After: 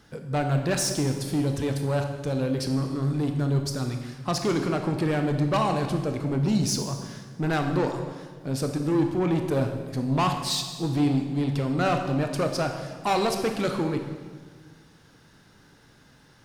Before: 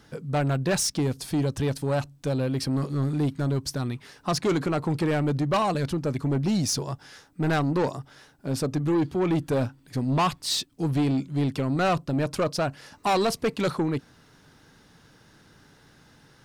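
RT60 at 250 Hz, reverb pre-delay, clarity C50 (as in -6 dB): 1.8 s, 21 ms, 6.0 dB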